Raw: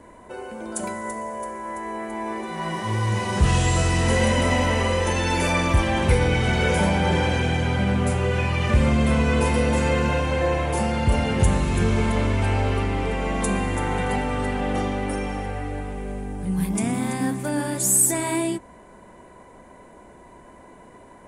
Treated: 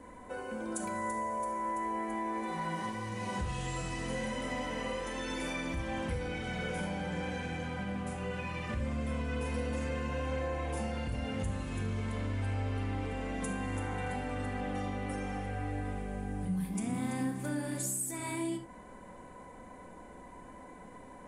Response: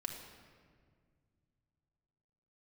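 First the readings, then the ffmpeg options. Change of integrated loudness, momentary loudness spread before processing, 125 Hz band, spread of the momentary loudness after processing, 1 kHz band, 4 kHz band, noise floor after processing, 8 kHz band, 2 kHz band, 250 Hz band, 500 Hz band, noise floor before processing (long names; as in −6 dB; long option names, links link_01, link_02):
−13.5 dB, 11 LU, −14.5 dB, 16 LU, −11.0 dB, −15.0 dB, −51 dBFS, −16.0 dB, −13.0 dB, −12.0 dB, −13.5 dB, −47 dBFS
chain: -filter_complex "[0:a]acompressor=threshold=-30dB:ratio=6[link_01];[1:a]atrim=start_sample=2205,afade=type=out:start_time=0.14:duration=0.01,atrim=end_sample=6615[link_02];[link_01][link_02]afir=irnorm=-1:irlink=0,volume=-2.5dB"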